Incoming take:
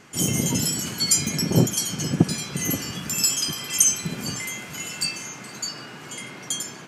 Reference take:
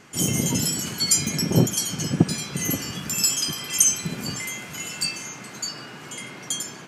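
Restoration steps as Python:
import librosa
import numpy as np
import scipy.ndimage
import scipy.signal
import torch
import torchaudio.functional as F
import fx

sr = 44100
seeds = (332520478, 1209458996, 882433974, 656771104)

y = fx.fix_echo_inverse(x, sr, delay_ms=466, level_db=-22.5)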